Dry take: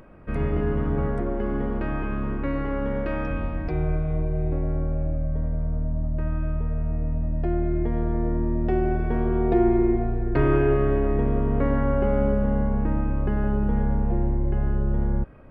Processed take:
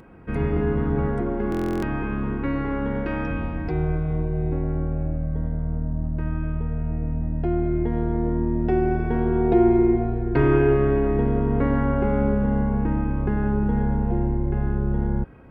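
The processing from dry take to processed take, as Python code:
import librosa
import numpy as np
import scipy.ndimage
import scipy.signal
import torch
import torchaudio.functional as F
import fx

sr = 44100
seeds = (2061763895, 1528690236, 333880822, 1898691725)

y = fx.notch_comb(x, sr, f0_hz=600.0)
y = fx.buffer_glitch(y, sr, at_s=(1.5,), block=1024, repeats=13)
y = y * librosa.db_to_amplitude(3.0)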